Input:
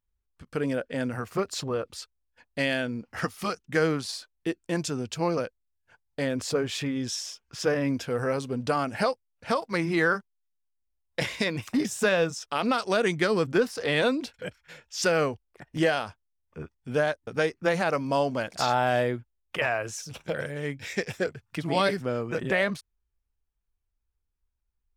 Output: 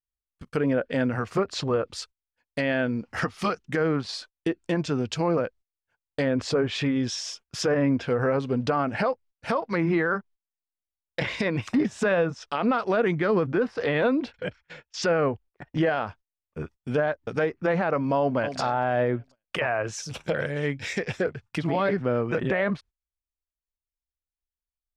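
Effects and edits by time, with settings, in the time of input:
14.32–15.81 air absorption 130 m
18.19–18.59 echo throw 0.24 s, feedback 35%, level -11.5 dB
whole clip: treble ducked by the level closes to 1900 Hz, closed at -23.5 dBFS; gate -50 dBFS, range -21 dB; limiter -20 dBFS; gain +5 dB

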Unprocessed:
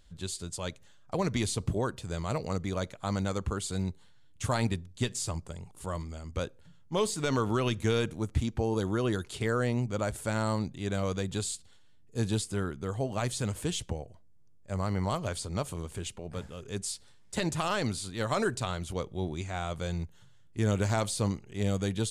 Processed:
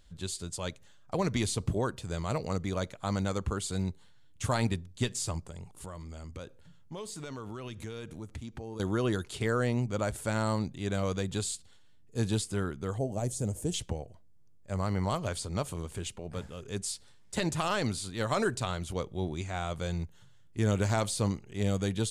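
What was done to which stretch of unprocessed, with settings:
5.46–8.8 compressor 4:1, threshold -39 dBFS
12.98–13.74 band shelf 2100 Hz -14.5 dB 2.5 oct

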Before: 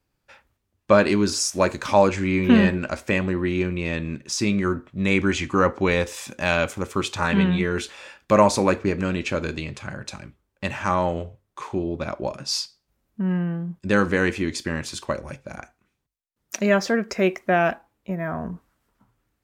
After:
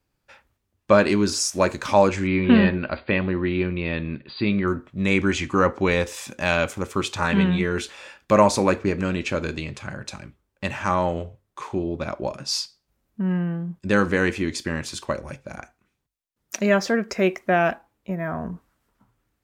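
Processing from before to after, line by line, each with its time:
2.27–4.68 brick-wall FIR low-pass 4800 Hz

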